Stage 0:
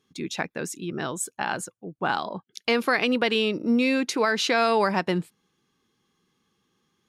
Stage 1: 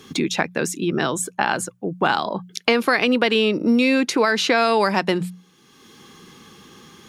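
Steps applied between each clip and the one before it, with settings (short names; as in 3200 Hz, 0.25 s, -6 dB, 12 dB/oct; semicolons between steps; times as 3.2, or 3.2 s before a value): notches 60/120/180 Hz; three-band squash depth 70%; gain +5 dB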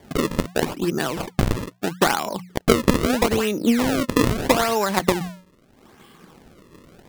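decimation with a swept rate 33×, swing 160% 0.78 Hz; transient shaper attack +8 dB, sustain +4 dB; gain -4 dB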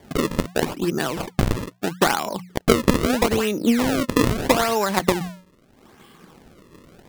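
nothing audible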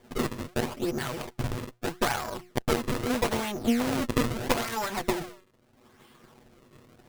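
minimum comb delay 8.2 ms; gain -5.5 dB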